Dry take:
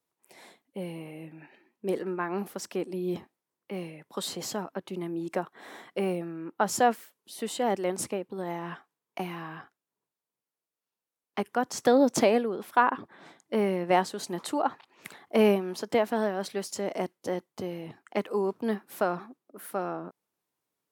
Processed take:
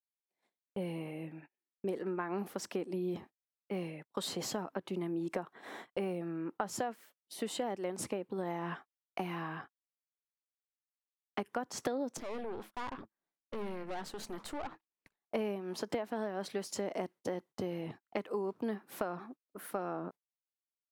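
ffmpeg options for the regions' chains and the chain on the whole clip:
ffmpeg -i in.wav -filter_complex "[0:a]asettb=1/sr,asplit=3[link_01][link_02][link_03];[link_01]atrim=end=12.174[link_04];[link_02]atrim=start=12.17:end=15.25,asetpts=PTS-STARTPTS,afade=type=in:duration=0.004:curve=qsin,afade=type=out:start_time=3.076:duration=0.004:curve=qsin,bandreject=frequency=107.1:width_type=h:width=4,bandreject=frequency=214.2:width_type=h:width=4,bandreject=frequency=321.3:width_type=h:width=4,acompressor=threshold=-33dB:ratio=2:attack=3.2:release=140:knee=1:detection=peak,aeval=exprs='(tanh(63.1*val(0)+0.8)-tanh(0.8))/63.1':channel_layout=same[link_05];[link_03]atrim=start=15.246[link_06];[link_04][link_05]acrossfade=duration=0.004:curve1=hsin:curve2=qsin[link_07];[link_07][link_06]acrossfade=duration=0.004:curve1=qsin:curve2=hsin,agate=range=-38dB:threshold=-47dB:ratio=16:detection=peak,highshelf=frequency=4600:gain=-5.5,acompressor=threshold=-32dB:ratio=12" out.wav

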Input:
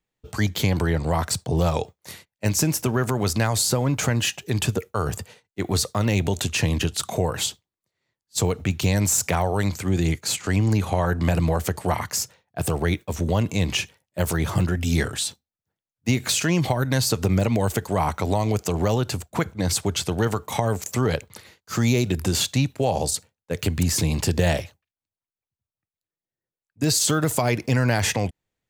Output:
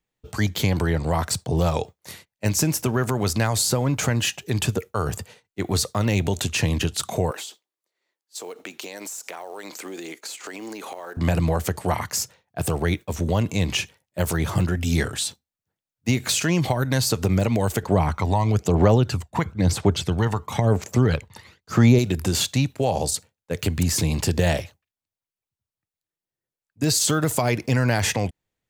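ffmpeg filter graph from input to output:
ffmpeg -i in.wav -filter_complex "[0:a]asettb=1/sr,asplit=3[link_01][link_02][link_03];[link_01]atrim=end=7.314[link_04];[link_02]atrim=start=7.31:end=11.17,asetpts=PTS-STARTPTS,afade=type=in:duration=0.004:curve=qsin,afade=type=out:start_time=3.856:duration=0.004:curve=qsin,highpass=frequency=310:width=0.5412,highpass=frequency=310:width=1.3066,acompressor=threshold=-31dB:ratio=10:attack=3.2:release=140:knee=1:detection=peak,acrusher=bits=6:mode=log:mix=0:aa=0.000001[link_05];[link_03]atrim=start=11.166[link_06];[link_04][link_05]acrossfade=duration=0.004:curve1=hsin:curve2=qsin[link_07];[link_07][link_06]acrossfade=duration=0.004:curve1=qsin:curve2=hsin,asettb=1/sr,asplit=3[link_08][link_09][link_10];[link_08]atrim=end=17.834[link_11];[link_09]atrim=start=17.83:end=21.99,asetpts=PTS-STARTPTS,afade=type=in:duration=0.004:curve=qsin,afade=type=out:start_time=4.156:duration=0.004:curve=qsin,lowpass=frequency=3800:poles=1,aphaser=in_gain=1:out_gain=1:delay=1.1:decay=0.5:speed=1:type=sinusoidal[link_12];[link_10]atrim=start=21.986[link_13];[link_11][link_12]acrossfade=duration=0.004:curve1=hsin:curve2=qsin[link_14];[link_14][link_13]acrossfade=duration=0.004:curve1=qsin:curve2=hsin" out.wav

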